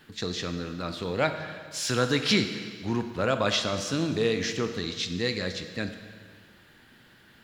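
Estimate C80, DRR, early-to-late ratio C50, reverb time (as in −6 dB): 9.5 dB, 7.0 dB, 8.0 dB, 1.8 s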